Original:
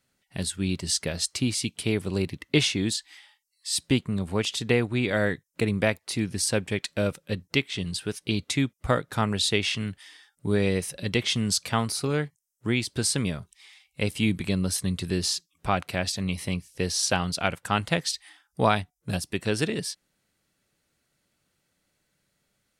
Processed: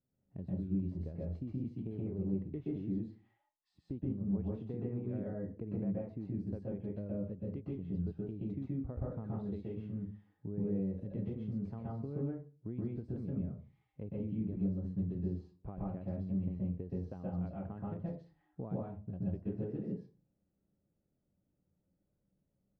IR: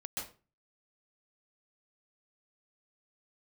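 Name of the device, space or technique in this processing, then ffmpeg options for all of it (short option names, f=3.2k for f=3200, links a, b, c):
television next door: -filter_complex "[0:a]acompressor=threshold=-31dB:ratio=4,lowpass=430[a];[1:a]atrim=start_sample=2205[b];[a][b]afir=irnorm=-1:irlink=0,volume=-2.5dB"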